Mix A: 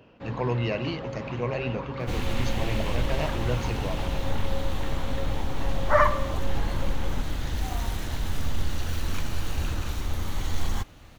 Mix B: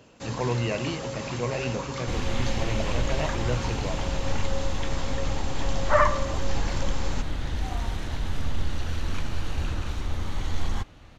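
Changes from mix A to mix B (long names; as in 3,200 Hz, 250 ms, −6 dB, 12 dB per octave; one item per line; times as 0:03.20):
first sound: remove high-frequency loss of the air 450 metres
second sound: add high-frequency loss of the air 57 metres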